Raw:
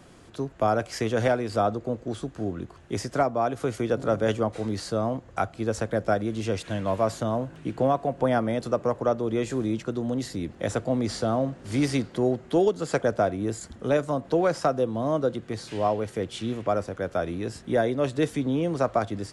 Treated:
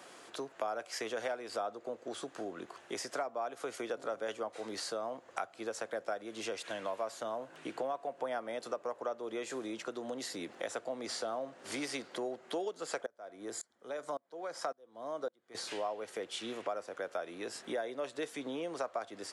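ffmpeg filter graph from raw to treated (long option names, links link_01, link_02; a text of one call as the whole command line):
ffmpeg -i in.wav -filter_complex "[0:a]asettb=1/sr,asplit=3[link_01][link_02][link_03];[link_01]atrim=end=13.064[link_04];[link_02]atrim=start=13.06:end=15.55,asetpts=PTS-STARTPTS,afade=type=in:duration=0.004:curve=qsin,afade=type=out:start_time=2.486:duration=0.004:curve=qsin,bandreject=frequency=2700:width=6.7,aeval=exprs='val(0)*pow(10,-30*if(lt(mod(-1.8*n/s,1),2*abs(-1.8)/1000),1-mod(-1.8*n/s,1)/(2*abs(-1.8)/1000),(mod(-1.8*n/s,1)-2*abs(-1.8)/1000)/(1-2*abs(-1.8)/1000))/20)':channel_layout=same[link_05];[link_03]atrim=start=15.546[link_06];[link_04][link_05]acrossfade=duration=0.004:curve1=hsin:curve2=qsin[link_07];[link_07][link_06]acrossfade=duration=0.004:curve1=qsin:curve2=hsin,highpass=520,acompressor=threshold=-41dB:ratio=3,volume=2.5dB" out.wav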